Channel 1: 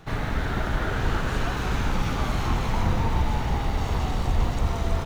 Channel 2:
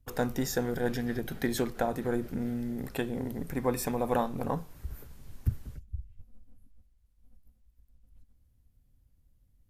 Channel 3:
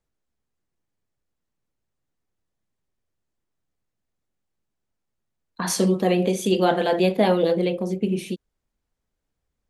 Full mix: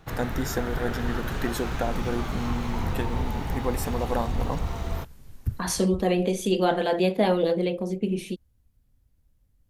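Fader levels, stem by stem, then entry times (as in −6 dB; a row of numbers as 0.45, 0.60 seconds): −5.0, +0.5, −3.0 decibels; 0.00, 0.00, 0.00 seconds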